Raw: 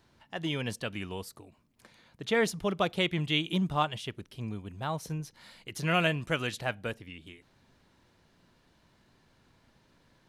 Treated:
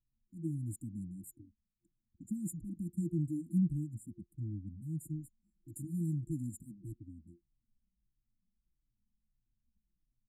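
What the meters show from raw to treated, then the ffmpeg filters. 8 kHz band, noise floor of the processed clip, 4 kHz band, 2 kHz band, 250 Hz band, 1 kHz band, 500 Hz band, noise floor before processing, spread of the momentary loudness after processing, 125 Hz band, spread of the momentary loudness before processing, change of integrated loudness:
-6.5 dB, -85 dBFS, under -40 dB, under -40 dB, -2.5 dB, under -40 dB, under -20 dB, -67 dBFS, 17 LU, -2.0 dB, 16 LU, -7.0 dB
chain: -filter_complex "[0:a]anlmdn=0.01,afftfilt=real='re*(1-between(b*sr/4096,350,7000))':imag='im*(1-between(b*sr/4096,350,7000))':win_size=4096:overlap=0.75,asplit=2[a][b];[b]adelay=3,afreqshift=-1.6[c];[a][c]amix=inputs=2:normalize=1"

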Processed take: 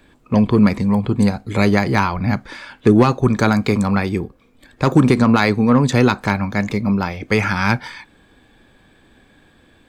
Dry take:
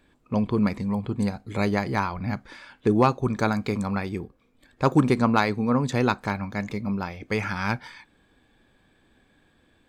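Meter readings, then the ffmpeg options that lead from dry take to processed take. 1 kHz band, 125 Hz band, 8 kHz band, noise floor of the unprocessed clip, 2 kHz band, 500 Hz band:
+5.5 dB, +9.5 dB, +9.5 dB, -64 dBFS, +9.0 dB, +7.5 dB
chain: -filter_complex "[0:a]acrossover=split=410|1100[a][b][c];[b]asoftclip=type=tanh:threshold=-28dB[d];[a][d][c]amix=inputs=3:normalize=0,alimiter=level_in=11dB:limit=-1dB:release=50:level=0:latency=1,volume=-1dB"

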